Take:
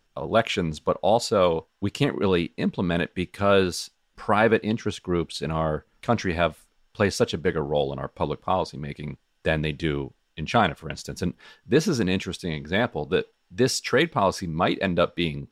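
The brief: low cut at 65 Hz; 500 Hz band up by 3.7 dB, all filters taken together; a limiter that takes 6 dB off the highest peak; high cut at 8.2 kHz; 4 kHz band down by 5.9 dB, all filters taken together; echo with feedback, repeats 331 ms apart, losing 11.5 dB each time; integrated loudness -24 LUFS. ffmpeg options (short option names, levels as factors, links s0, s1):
-af "highpass=65,lowpass=8200,equalizer=f=500:t=o:g=4.5,equalizer=f=4000:t=o:g=-7.5,alimiter=limit=0.316:level=0:latency=1,aecho=1:1:331|662|993:0.266|0.0718|0.0194,volume=1.06"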